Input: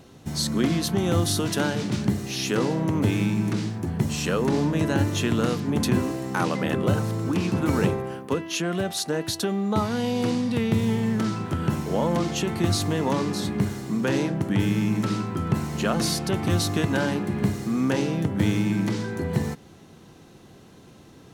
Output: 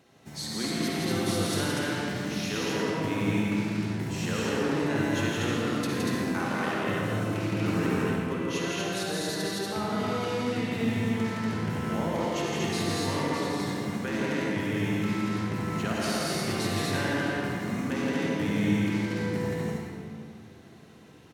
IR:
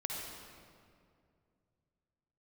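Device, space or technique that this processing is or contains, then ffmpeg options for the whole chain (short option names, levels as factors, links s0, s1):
stadium PA: -filter_complex "[0:a]highpass=f=180:p=1,equalizer=f=2000:t=o:w=0.85:g=5.5,aecho=1:1:166.2|239.1:0.708|0.794[s0];[1:a]atrim=start_sample=2205[s1];[s0][s1]afir=irnorm=-1:irlink=0,volume=0.376"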